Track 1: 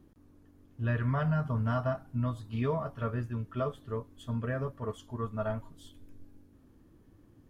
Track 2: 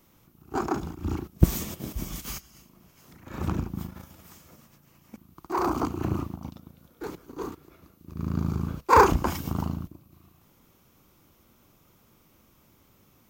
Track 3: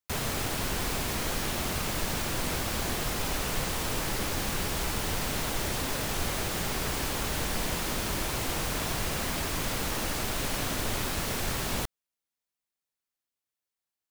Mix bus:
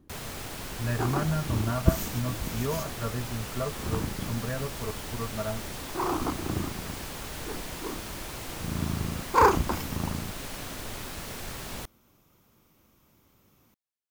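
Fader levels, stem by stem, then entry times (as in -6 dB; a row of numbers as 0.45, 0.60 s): 0.0, -3.0, -7.0 dB; 0.00, 0.45, 0.00 s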